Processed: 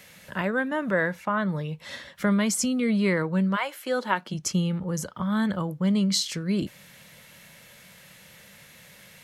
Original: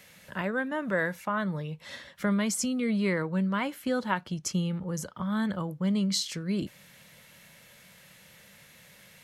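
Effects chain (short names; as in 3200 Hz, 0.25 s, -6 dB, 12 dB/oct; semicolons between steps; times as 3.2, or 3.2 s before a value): 0.91–1.49 high shelf 5800 Hz -10 dB; 3.55–4.33 HPF 600 Hz -> 160 Hz 24 dB/oct; gain +4 dB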